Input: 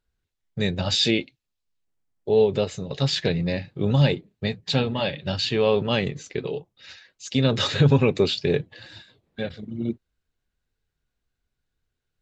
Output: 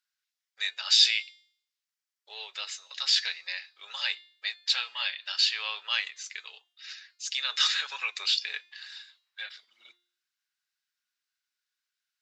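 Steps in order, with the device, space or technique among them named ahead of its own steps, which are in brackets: headphones lying on a table (high-pass 1.3 kHz 24 dB/octave; peaking EQ 5.2 kHz +6 dB 0.49 oct); de-hum 353 Hz, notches 28

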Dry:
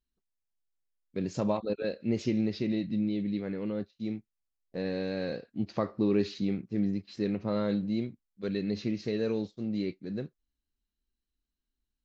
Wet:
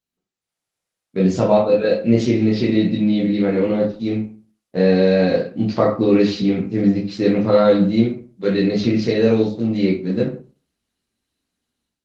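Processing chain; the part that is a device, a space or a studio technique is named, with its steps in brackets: far-field microphone of a smart speaker (reverberation RT60 0.40 s, pre-delay 13 ms, DRR -3.5 dB; high-pass 130 Hz 12 dB/octave; level rider gain up to 12.5 dB; Opus 20 kbps 48 kHz)

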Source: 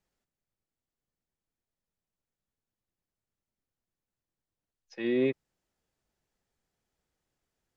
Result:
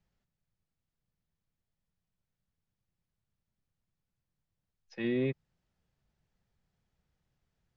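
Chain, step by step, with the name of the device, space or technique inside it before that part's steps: jukebox (low-pass 5.2 kHz; resonant low shelf 220 Hz +7.5 dB, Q 1.5; compression 3:1, threshold -28 dBFS, peak gain reduction 4.5 dB)

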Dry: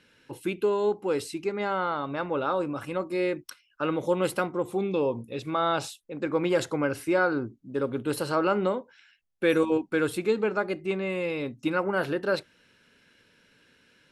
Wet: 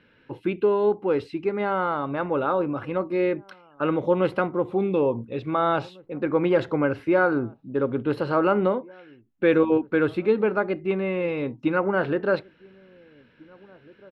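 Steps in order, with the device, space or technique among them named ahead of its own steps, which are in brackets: shout across a valley (distance through air 370 m; echo from a far wall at 300 m, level -25 dB); trim +5 dB

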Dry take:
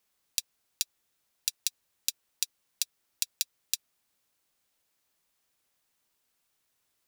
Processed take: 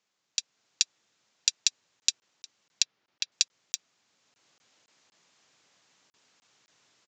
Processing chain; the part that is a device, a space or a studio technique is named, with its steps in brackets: call with lost packets (high-pass 110 Hz 24 dB/octave; resampled via 16 kHz; level rider gain up to 14 dB; lost packets); 2.82–3.32 s: distance through air 160 m

